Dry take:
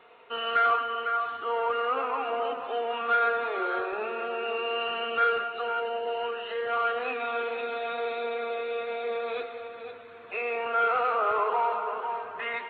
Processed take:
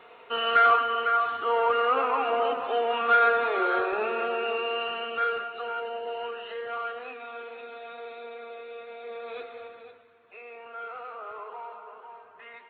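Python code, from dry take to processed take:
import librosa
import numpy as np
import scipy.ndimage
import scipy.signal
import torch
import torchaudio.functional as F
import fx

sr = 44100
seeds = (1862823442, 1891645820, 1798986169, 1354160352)

y = fx.gain(x, sr, db=fx.line((4.23, 4.0), (5.17, -3.0), (6.46, -3.0), (7.19, -9.5), (8.95, -9.5), (9.63, -2.5), (10.19, -14.0)))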